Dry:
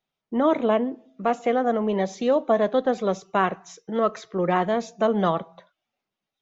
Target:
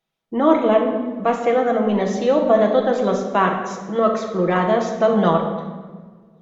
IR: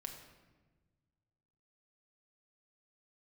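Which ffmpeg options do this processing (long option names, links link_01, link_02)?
-filter_complex "[1:a]atrim=start_sample=2205,asetrate=36603,aresample=44100[link_01];[0:a][link_01]afir=irnorm=-1:irlink=0,volume=7dB"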